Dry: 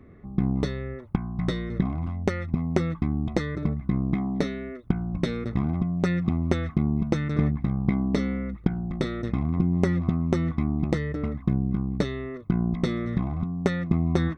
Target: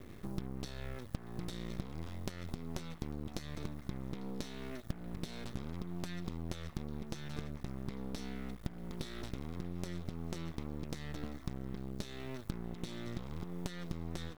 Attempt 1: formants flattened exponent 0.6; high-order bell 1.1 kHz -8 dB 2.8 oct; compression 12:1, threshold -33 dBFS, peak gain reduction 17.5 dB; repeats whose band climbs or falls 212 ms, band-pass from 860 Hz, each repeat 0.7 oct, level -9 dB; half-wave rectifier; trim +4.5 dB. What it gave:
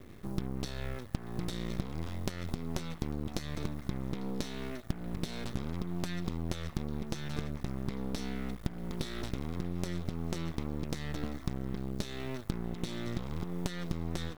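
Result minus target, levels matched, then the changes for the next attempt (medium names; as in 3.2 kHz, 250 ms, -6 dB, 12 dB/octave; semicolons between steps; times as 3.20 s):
compression: peak gain reduction -5.5 dB
change: compression 12:1, threshold -39 dBFS, peak gain reduction 23 dB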